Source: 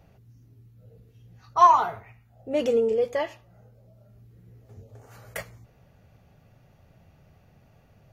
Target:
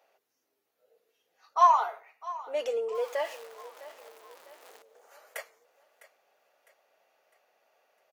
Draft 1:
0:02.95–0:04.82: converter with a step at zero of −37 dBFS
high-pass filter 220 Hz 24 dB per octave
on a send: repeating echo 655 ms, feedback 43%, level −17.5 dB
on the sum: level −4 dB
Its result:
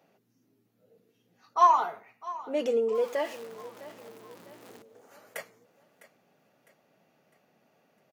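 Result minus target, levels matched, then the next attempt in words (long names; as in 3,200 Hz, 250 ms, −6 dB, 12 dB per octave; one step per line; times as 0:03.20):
250 Hz band +18.0 dB
0:02.95–0:04.82: converter with a step at zero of −37 dBFS
high-pass filter 500 Hz 24 dB per octave
on a send: repeating echo 655 ms, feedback 43%, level −17.5 dB
on the sum: level −4 dB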